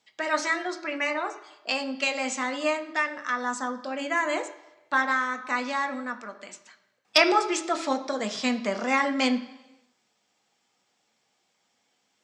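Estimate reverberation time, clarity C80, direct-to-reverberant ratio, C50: 1.0 s, 15.5 dB, 6.0 dB, 13.5 dB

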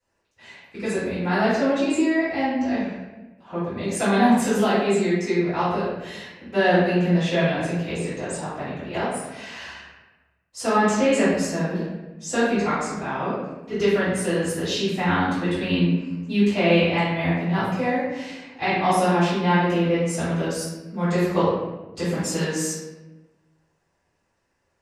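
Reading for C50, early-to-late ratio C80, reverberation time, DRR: -1.5 dB, 2.0 dB, 1.1 s, -15.0 dB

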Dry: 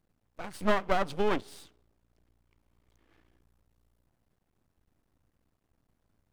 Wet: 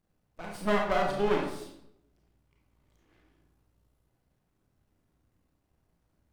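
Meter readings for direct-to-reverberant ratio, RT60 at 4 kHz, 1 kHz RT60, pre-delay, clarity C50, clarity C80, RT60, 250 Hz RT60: -0.5 dB, 0.55 s, 0.65 s, 25 ms, 3.0 dB, 6.5 dB, 0.75 s, 0.95 s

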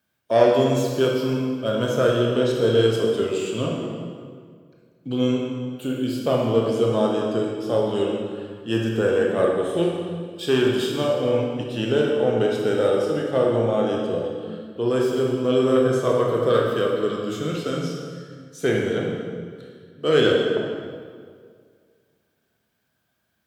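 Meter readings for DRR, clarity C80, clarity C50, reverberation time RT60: -1.5 dB, 2.5 dB, 1.0 dB, 2.0 s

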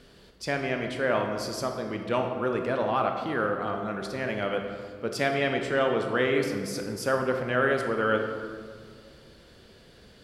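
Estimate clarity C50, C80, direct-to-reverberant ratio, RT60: 5.0 dB, 6.5 dB, 3.5 dB, 2.0 s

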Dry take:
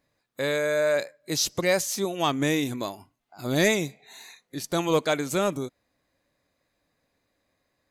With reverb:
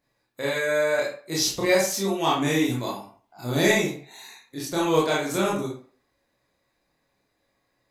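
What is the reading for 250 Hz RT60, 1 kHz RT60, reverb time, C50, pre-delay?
0.35 s, 0.45 s, 0.45 s, 3.5 dB, 21 ms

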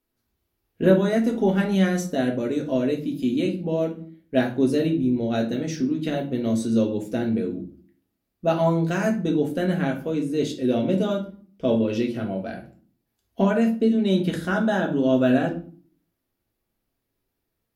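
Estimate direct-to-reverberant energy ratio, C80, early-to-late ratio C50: -0.5 dB, 16.0 dB, 10.0 dB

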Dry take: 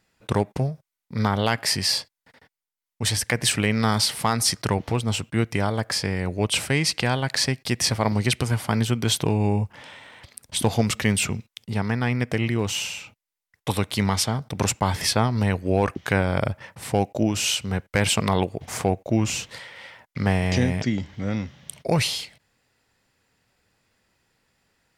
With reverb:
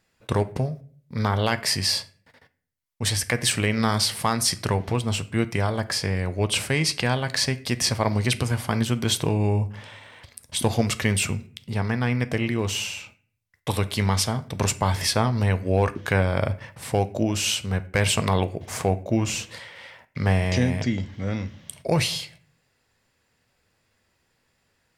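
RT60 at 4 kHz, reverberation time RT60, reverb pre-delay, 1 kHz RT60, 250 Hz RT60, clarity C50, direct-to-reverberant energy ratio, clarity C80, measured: 0.35 s, 0.50 s, 8 ms, 0.40 s, 0.65 s, 18.0 dB, 11.5 dB, 22.0 dB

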